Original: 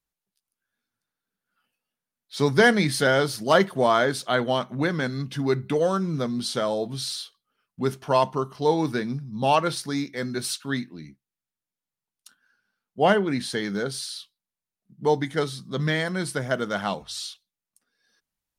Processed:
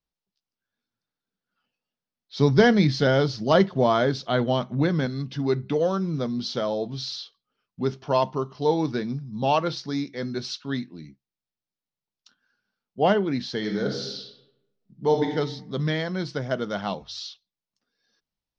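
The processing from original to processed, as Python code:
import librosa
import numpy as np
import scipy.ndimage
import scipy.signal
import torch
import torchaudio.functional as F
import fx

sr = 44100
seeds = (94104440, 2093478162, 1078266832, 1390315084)

y = fx.low_shelf(x, sr, hz=180.0, db=9.0, at=(2.38, 5.06))
y = fx.reverb_throw(y, sr, start_s=13.57, length_s=1.77, rt60_s=0.9, drr_db=1.5)
y = scipy.signal.sosfilt(scipy.signal.butter(8, 5800.0, 'lowpass', fs=sr, output='sos'), y)
y = fx.peak_eq(y, sr, hz=1700.0, db=-5.5, octaves=1.5)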